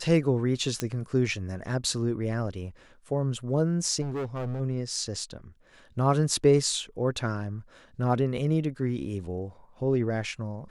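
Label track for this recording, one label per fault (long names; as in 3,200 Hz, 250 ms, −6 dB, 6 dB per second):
0.800000	0.800000	click −13 dBFS
4.010000	4.610000	clipping −28 dBFS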